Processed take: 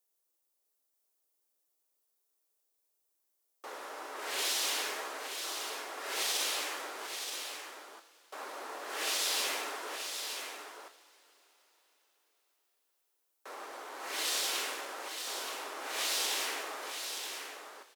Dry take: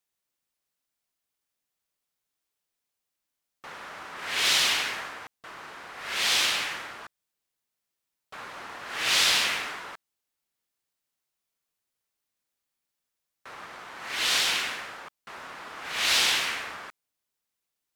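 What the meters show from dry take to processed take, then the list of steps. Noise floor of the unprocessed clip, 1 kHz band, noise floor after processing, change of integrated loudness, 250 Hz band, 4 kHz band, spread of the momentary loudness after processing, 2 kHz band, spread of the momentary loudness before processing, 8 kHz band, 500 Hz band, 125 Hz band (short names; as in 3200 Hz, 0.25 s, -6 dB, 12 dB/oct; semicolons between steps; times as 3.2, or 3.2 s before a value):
-85 dBFS, -4.5 dB, -80 dBFS, -10.5 dB, -4.0 dB, -9.0 dB, 17 LU, -9.5 dB, 22 LU, -3.5 dB, 0.0 dB, under -25 dB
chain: steep high-pass 320 Hz 36 dB/oct; bell 2200 Hz -13.5 dB 2.9 oct; in parallel at -1.5 dB: compressor, threshold -44 dBFS, peak gain reduction 15 dB; on the sum: limiter -24.5 dBFS, peak gain reduction 7 dB; on a send: echo 0.926 s -7 dB; on the sum: two-slope reverb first 0.44 s, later 4.8 s, from -19 dB, DRR 7 dB; gain +1 dB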